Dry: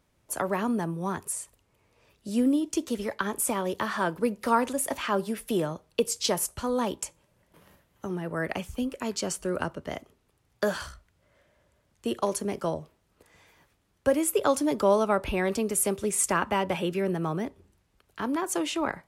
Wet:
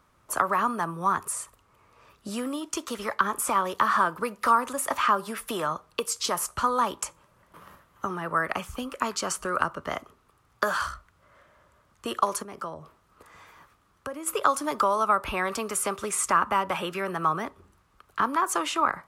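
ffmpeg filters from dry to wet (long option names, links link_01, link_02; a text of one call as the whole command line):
ffmpeg -i in.wav -filter_complex "[0:a]asplit=3[link_01][link_02][link_03];[link_01]afade=type=out:start_time=12.42:duration=0.02[link_04];[link_02]acompressor=threshold=-45dB:ratio=2.5:attack=3.2:release=140:knee=1:detection=peak,afade=type=in:start_time=12.42:duration=0.02,afade=type=out:start_time=14.26:duration=0.02[link_05];[link_03]afade=type=in:start_time=14.26:duration=0.02[link_06];[link_04][link_05][link_06]amix=inputs=3:normalize=0,acrossover=split=650|7200[link_07][link_08][link_09];[link_07]acompressor=threshold=-38dB:ratio=4[link_10];[link_08]acompressor=threshold=-33dB:ratio=4[link_11];[link_09]acompressor=threshold=-34dB:ratio=4[link_12];[link_10][link_11][link_12]amix=inputs=3:normalize=0,equalizer=frequency=1200:width_type=o:width=0.68:gain=14.5,volume=3dB" out.wav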